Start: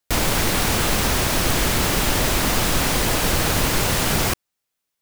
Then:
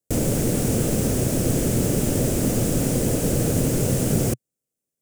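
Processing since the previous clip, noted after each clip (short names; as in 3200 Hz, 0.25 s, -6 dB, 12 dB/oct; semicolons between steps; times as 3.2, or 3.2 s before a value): graphic EQ 125/250/500/1000/2000/4000/8000 Hz +11/+8/+10/-11/-5/-9/+7 dB; gain -7 dB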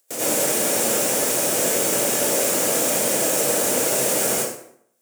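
HPF 650 Hz 12 dB/oct; upward compressor, threshold -52 dBFS; plate-style reverb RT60 0.66 s, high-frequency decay 0.75×, pre-delay 75 ms, DRR -9 dB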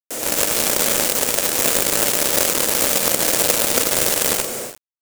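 echo 0.154 s -7 dB; companded quantiser 2-bit; gain -1 dB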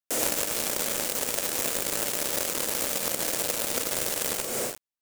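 compressor 5:1, threshold -22 dBFS, peak gain reduction 12.5 dB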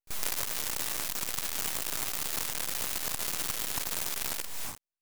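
spectral whitening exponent 0.6; pre-echo 33 ms -20.5 dB; full-wave rectifier; gain -4 dB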